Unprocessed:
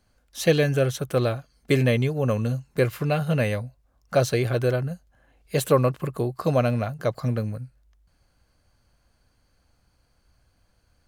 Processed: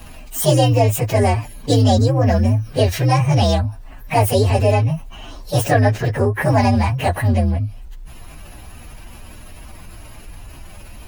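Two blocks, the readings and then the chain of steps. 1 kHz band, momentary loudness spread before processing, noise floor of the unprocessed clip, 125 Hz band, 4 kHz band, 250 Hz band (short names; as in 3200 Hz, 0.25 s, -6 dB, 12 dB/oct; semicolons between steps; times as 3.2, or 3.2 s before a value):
+12.0 dB, 11 LU, -67 dBFS, +9.0 dB, +8.5 dB, +7.0 dB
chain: inharmonic rescaling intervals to 130%; fast leveller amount 50%; gain +7.5 dB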